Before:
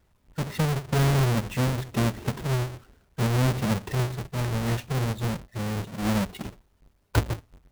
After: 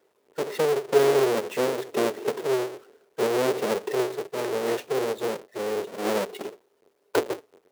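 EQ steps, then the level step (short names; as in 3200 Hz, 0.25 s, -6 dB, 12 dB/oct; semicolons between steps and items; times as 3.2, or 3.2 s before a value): resonant high-pass 420 Hz, resonance Q 4.9; 0.0 dB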